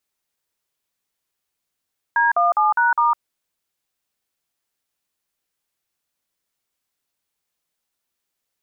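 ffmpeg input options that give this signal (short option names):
-f lavfi -i "aevalsrc='0.15*clip(min(mod(t,0.204),0.157-mod(t,0.204))/0.002,0,1)*(eq(floor(t/0.204),0)*(sin(2*PI*941*mod(t,0.204))+sin(2*PI*1633*mod(t,0.204)))+eq(floor(t/0.204),1)*(sin(2*PI*697*mod(t,0.204))+sin(2*PI*1209*mod(t,0.204)))+eq(floor(t/0.204),2)*(sin(2*PI*852*mod(t,0.204))+sin(2*PI*1209*mod(t,0.204)))+eq(floor(t/0.204),3)*(sin(2*PI*941*mod(t,0.204))+sin(2*PI*1477*mod(t,0.204)))+eq(floor(t/0.204),4)*(sin(2*PI*941*mod(t,0.204))+sin(2*PI*1209*mod(t,0.204))))':d=1.02:s=44100"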